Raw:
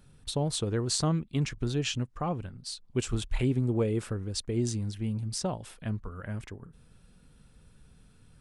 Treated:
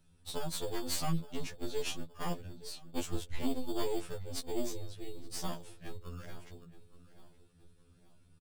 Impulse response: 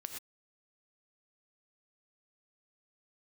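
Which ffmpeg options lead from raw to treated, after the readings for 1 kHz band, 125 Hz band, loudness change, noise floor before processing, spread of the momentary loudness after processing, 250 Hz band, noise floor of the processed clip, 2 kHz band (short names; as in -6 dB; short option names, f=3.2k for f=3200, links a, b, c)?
-4.0 dB, -13.5 dB, -8.0 dB, -59 dBFS, 12 LU, -8.5 dB, -64 dBFS, -5.5 dB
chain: -filter_complex "[0:a]aeval=exprs='0.224*(cos(1*acos(clip(val(0)/0.224,-1,1)))-cos(1*PI/2))+0.0562*(cos(6*acos(clip(val(0)/0.224,-1,1)))-cos(6*PI/2))':c=same,asplit=2[a][b];[b]adelay=871,lowpass=f=2.2k:p=1,volume=-16.5dB,asplit=2[c][d];[d]adelay=871,lowpass=f=2.2k:p=1,volume=0.44,asplit=2[e][f];[f]adelay=871,lowpass=f=2.2k:p=1,volume=0.44,asplit=2[g][h];[h]adelay=871,lowpass=f=2.2k:p=1,volume=0.44[i];[a][c][e][g][i]amix=inputs=5:normalize=0,acrossover=split=190|1500[j][k][l];[k]acrusher=samples=11:mix=1:aa=0.000001[m];[j][m][l]amix=inputs=3:normalize=0,afftfilt=real='re*2*eq(mod(b,4),0)':imag='im*2*eq(mod(b,4),0)':win_size=2048:overlap=0.75,volume=-5.5dB"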